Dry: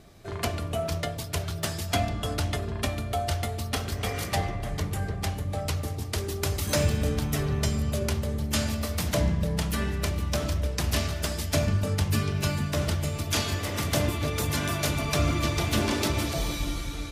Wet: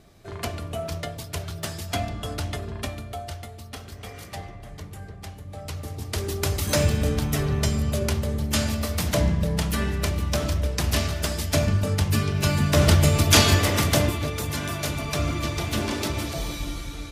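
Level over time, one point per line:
0:02.75 −1.5 dB
0:03.49 −9 dB
0:05.42 −9 dB
0:06.27 +3 dB
0:12.34 +3 dB
0:12.94 +11 dB
0:13.54 +11 dB
0:14.39 −1 dB

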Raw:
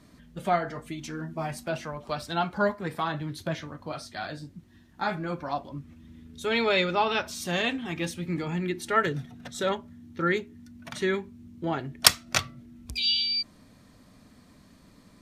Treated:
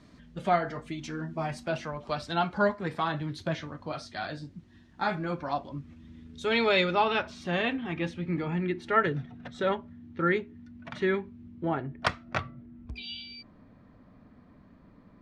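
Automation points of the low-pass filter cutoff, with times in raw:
0:06.80 5,800 Hz
0:07.33 2,700 Hz
0:11.45 2,700 Hz
0:11.93 1,600 Hz

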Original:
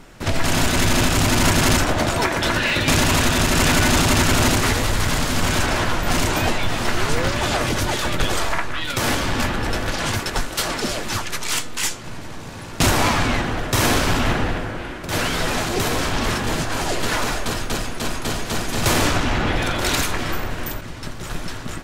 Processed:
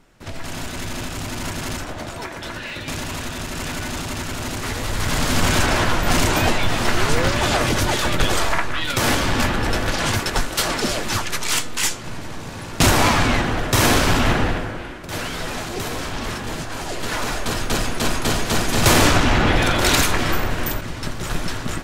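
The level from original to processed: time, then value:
0:04.44 −11 dB
0:05.31 +2 dB
0:14.46 +2 dB
0:15.20 −5.5 dB
0:16.88 −5.5 dB
0:17.86 +4 dB

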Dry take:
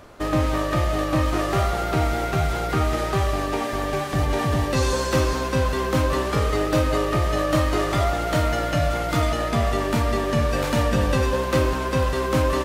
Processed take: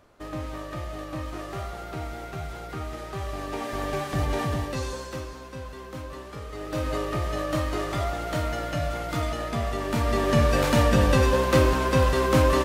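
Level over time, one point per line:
0:03.07 −12.5 dB
0:03.84 −4 dB
0:04.41 −4 dB
0:05.32 −16.5 dB
0:06.48 −16.5 dB
0:06.88 −6.5 dB
0:09.78 −6.5 dB
0:10.32 +1 dB

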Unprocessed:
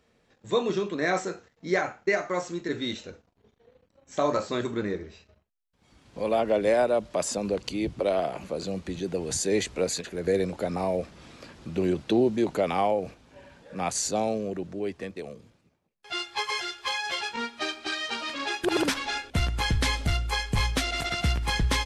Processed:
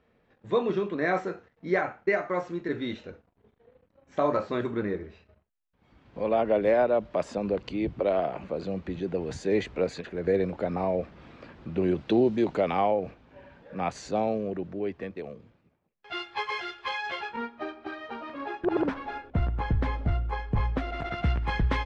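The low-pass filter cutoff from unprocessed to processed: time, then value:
0:11.80 2,400 Hz
0:12.25 4,100 Hz
0:13.06 2,500 Hz
0:17.05 2,500 Hz
0:17.61 1,100 Hz
0:20.74 1,100 Hz
0:21.35 1,900 Hz

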